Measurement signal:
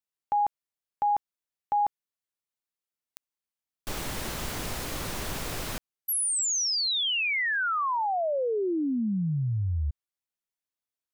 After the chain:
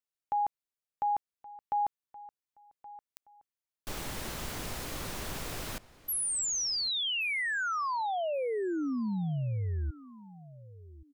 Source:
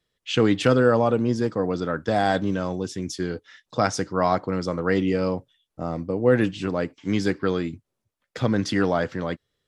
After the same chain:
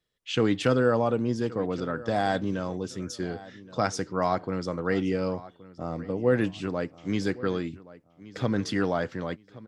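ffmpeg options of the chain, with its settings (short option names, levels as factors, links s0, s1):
-filter_complex "[0:a]asplit=2[s0][s1];[s1]adelay=1123,lowpass=f=4500:p=1,volume=0.119,asplit=2[s2][s3];[s3]adelay=1123,lowpass=f=4500:p=1,volume=0.26[s4];[s0][s2][s4]amix=inputs=3:normalize=0,volume=0.596"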